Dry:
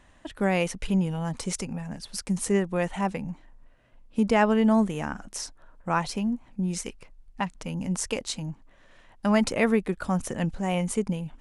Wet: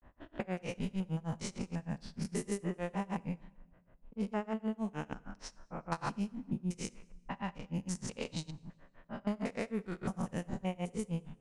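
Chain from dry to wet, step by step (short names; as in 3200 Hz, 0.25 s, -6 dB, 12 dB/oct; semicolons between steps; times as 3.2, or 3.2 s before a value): stepped spectrum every 0.2 s; compressor 12:1, threshold -31 dBFS, peak gain reduction 14 dB; grains 0.138 s, grains 6.5/s, spray 22 ms, pitch spread up and down by 0 st; low-pass opened by the level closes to 1200 Hz, open at -34 dBFS; on a send: reverb RT60 1.3 s, pre-delay 12 ms, DRR 20.5 dB; on the sum: gain +2.5 dB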